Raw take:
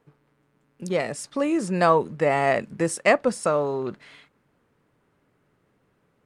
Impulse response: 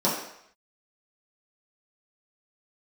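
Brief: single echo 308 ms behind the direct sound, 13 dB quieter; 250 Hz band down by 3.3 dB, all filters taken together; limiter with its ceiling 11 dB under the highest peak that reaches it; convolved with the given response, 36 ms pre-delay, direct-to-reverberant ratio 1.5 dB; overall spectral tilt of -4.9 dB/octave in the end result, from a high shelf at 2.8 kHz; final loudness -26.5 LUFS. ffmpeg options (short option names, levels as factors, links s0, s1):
-filter_complex "[0:a]equalizer=f=250:t=o:g=-5,highshelf=f=2800:g=5.5,alimiter=limit=0.168:level=0:latency=1,aecho=1:1:308:0.224,asplit=2[s0][s1];[1:a]atrim=start_sample=2205,adelay=36[s2];[s1][s2]afir=irnorm=-1:irlink=0,volume=0.168[s3];[s0][s3]amix=inputs=2:normalize=0,volume=0.668"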